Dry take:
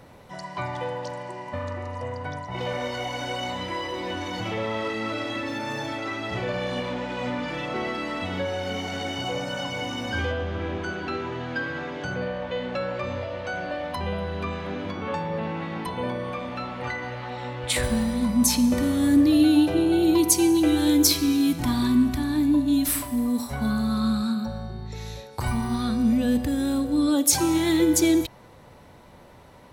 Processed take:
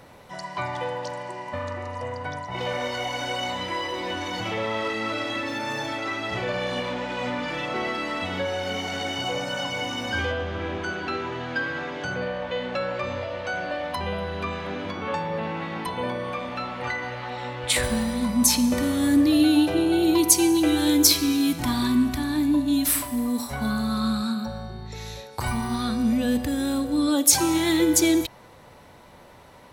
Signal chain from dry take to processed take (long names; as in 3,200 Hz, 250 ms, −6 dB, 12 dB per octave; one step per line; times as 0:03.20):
low-shelf EQ 450 Hz −5.5 dB
level +3 dB